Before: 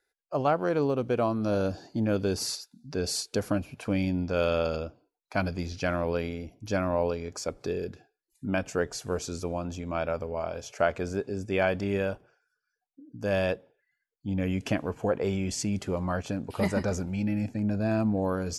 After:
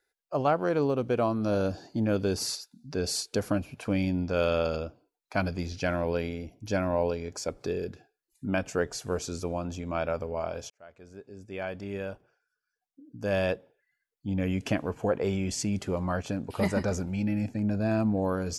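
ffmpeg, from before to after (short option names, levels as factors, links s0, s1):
-filter_complex "[0:a]asettb=1/sr,asplit=3[s0][s1][s2];[s0]atrim=end=5.674[s3];[s1]atrim=start=5.67:end=7.49,asetpts=PTS-STARTPTS,afade=t=in:d=0.004:c=qsin,afade=t=out:st=1.816:d=0.004:c=qsin,bandreject=f=1200:w=6.8[s4];[s2]atrim=start=7.486[s5];[s3][s4]acrossfade=d=0.004:c1=hsin:c2=qsin[s6];[s6][s5]acrossfade=d=0.004:c1=qsin:c2=hsin,asplit=2[s7][s8];[s7]atrim=end=10.7,asetpts=PTS-STARTPTS,afade=t=out:st=10.696:d=0.004:c=hsin[s9];[s8]atrim=start=10.7,asetpts=PTS-STARTPTS,afade=t=in:d=2.82[s10];[s9][s10]concat=n=2:v=0:a=1"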